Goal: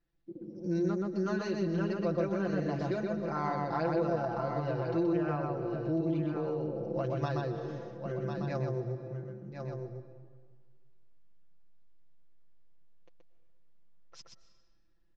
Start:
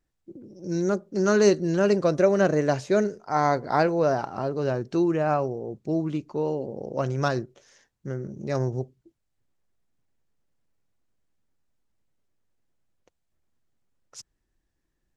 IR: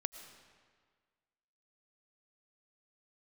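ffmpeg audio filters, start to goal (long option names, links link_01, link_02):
-filter_complex "[0:a]lowpass=frequency=4800:width=0.5412,lowpass=frequency=4800:width=1.3066,aecho=1:1:1048:0.266,asplit=2[link_01][link_02];[1:a]atrim=start_sample=2205,lowshelf=frequency=460:gain=6,adelay=126[link_03];[link_02][link_03]afir=irnorm=-1:irlink=0,volume=-3dB[link_04];[link_01][link_04]amix=inputs=2:normalize=0,acompressor=threshold=-28dB:ratio=3,aecho=1:1:5.9:0.86,volume=-5.5dB"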